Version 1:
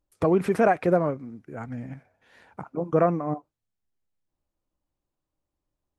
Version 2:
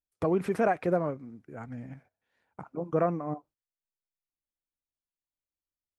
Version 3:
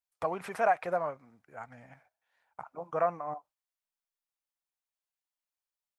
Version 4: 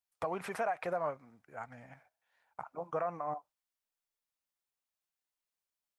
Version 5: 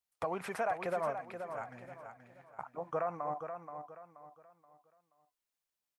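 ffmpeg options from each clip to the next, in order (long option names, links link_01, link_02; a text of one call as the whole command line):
ffmpeg -i in.wav -af "agate=range=-15dB:threshold=-51dB:ratio=16:detection=peak,volume=-5.5dB" out.wav
ffmpeg -i in.wav -af "lowshelf=frequency=500:width_type=q:width=1.5:gain=-13" out.wav
ffmpeg -i in.wav -af "alimiter=level_in=1dB:limit=-24dB:level=0:latency=1:release=113,volume=-1dB" out.wav
ffmpeg -i in.wav -af "aecho=1:1:478|956|1434|1912:0.398|0.135|0.046|0.0156" out.wav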